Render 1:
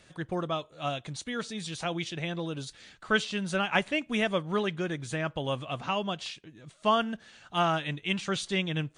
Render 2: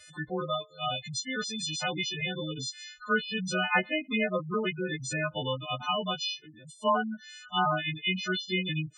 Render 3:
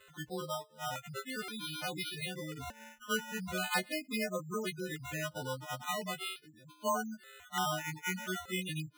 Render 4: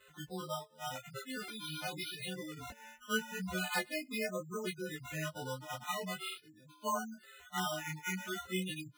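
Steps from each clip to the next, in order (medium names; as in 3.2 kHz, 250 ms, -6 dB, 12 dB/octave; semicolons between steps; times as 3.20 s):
partials quantised in pitch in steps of 3 st; low-pass that closes with the level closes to 2 kHz, closed at -21.5 dBFS; spectral gate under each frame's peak -10 dB strong
decimation with a swept rate 8×, swing 60% 0.41 Hz; trim -7 dB
chorus voices 2, 0.86 Hz, delay 18 ms, depth 2.5 ms; trim +1 dB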